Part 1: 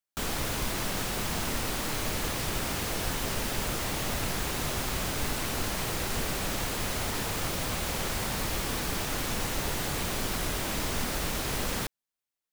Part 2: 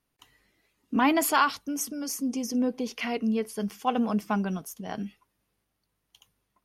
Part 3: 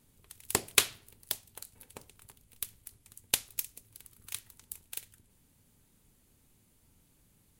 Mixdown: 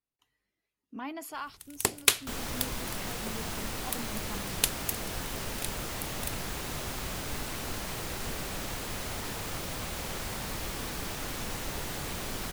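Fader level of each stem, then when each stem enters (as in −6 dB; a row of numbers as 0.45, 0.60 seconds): −5.0, −16.5, +1.5 decibels; 2.10, 0.00, 1.30 seconds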